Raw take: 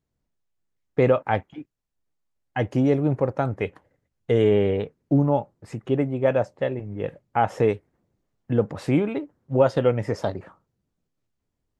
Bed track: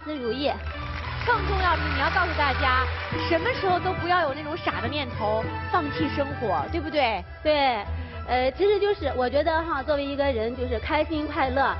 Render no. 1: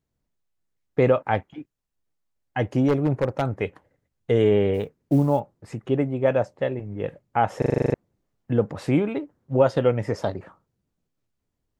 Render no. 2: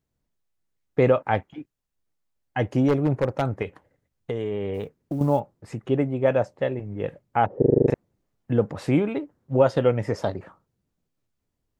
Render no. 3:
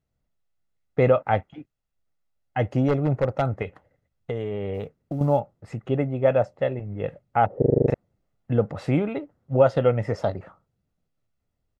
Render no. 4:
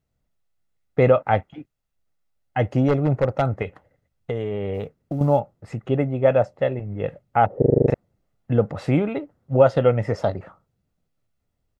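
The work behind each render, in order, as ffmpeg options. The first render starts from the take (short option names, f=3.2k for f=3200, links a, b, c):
-filter_complex "[0:a]asettb=1/sr,asplit=3[a][b][c];[a]atrim=end=2.884[d];[b]atrim=start=2.88:end=3.57,asetpts=PTS-STARTPTS,afade=t=in:d=0.004:c=qsin,afade=t=out:st=0.686:d=0.004:c=qsin,aeval=exprs='0.211*(abs(mod(val(0)/0.211+3,4)-2)-1)':c=same[e];[c]atrim=start=3.566[f];[d][e]acrossfade=d=0.004:c1=hsin:c2=qsin[g];[g][f]acrossfade=d=0.004:c1=qsin:c2=hsin,asplit=3[h][i][j];[h]afade=t=out:st=4.73:d=0.02[k];[i]acrusher=bits=9:mode=log:mix=0:aa=0.000001,afade=t=in:st=4.73:d=0.02,afade=t=out:st=5.39:d=0.02[l];[j]afade=t=in:st=5.39:d=0.02[m];[k][l][m]amix=inputs=3:normalize=0,asplit=10[n][o][p][q][r][s][t][u][v][w];[n]atrim=end=7.622[x];[o]atrim=start=7.578:end=7.622[y];[p]atrim=start=7.578:end=7.622[z];[q]atrim=start=7.578:end=7.622[aa];[r]atrim=start=7.578:end=7.622[ab];[s]atrim=start=7.578:end=7.622[ac];[t]atrim=start=7.578:end=7.622[ad];[u]atrim=start=7.578:end=7.622[ae];[v]atrim=start=7.578:end=7.622[af];[w]atrim=start=7.938[ag];[x][y]acrossfade=d=0.004:c1=hsin:c2=hsin[ah];[ah][z]acrossfade=d=0.004:c1=hsin:c2=hsin[ai];[ai][aa]acrossfade=d=0.004:c1=hsin:c2=hsin[aj];[aj][ab]acrossfade=d=0.004:c1=hsin:c2=hsin[ak];[ak][ac]acrossfade=d=0.004:c1=hsin:c2=hsin[al];[al][ad]acrossfade=d=0.004:c1=hsin:c2=hsin[am];[am][ae]acrossfade=d=0.004:c1=hsin:c2=hsin[an];[an][af]acrossfade=d=0.004:c1=hsin:c2=hsin[ao];[ao][ag]acrossfade=d=0.004:c1=hsin:c2=hsin"
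-filter_complex "[0:a]asettb=1/sr,asplit=3[a][b][c];[a]atrim=end=3.624[d];[b]atrim=start=3.62:end=5.21,asetpts=PTS-STARTPTS,afade=t=in:d=0.004:c=qsin,afade=t=out:st=1.586:d=0.004:c=qsin,acompressor=threshold=-24dB:ratio=6:attack=3.2:release=140:knee=1:detection=peak[e];[c]atrim=start=5.206[f];[d][e]acrossfade=d=0.004:c1=hsin:c2=qsin[g];[g][f]acrossfade=d=0.004:c1=qsin:c2=hsin,asettb=1/sr,asplit=3[h][i][j];[h]atrim=end=7.464[k];[i]atrim=start=7.46:end=7.88,asetpts=PTS-STARTPTS,afade=t=in:d=0.004:c=qsin,afade=t=out:st=0.416:d=0.004:c=qsin,lowpass=f=400:t=q:w=2.3[l];[j]atrim=start=7.876[m];[k][l]acrossfade=d=0.004:c1=hsin:c2=qsin[n];[n][m]acrossfade=d=0.004:c1=qsin:c2=hsin"
-af "lowpass=f=3.7k:p=1,aecho=1:1:1.5:0.34"
-af "volume=2.5dB"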